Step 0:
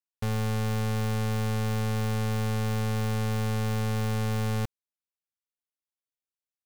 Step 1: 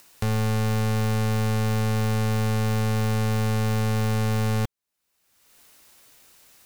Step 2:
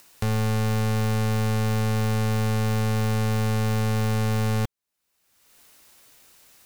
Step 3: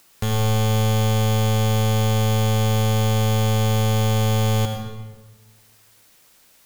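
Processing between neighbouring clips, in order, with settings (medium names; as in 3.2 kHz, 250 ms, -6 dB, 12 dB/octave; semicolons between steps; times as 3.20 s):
band-stop 3.3 kHz, Q 25; upward compressor, threshold -31 dBFS; trim +4.5 dB
no audible change
in parallel at -6 dB: bit crusher 4-bit; on the sum: added noise white -56 dBFS; reverberation RT60 1.4 s, pre-delay 67 ms, DRR 4.5 dB; trim -3.5 dB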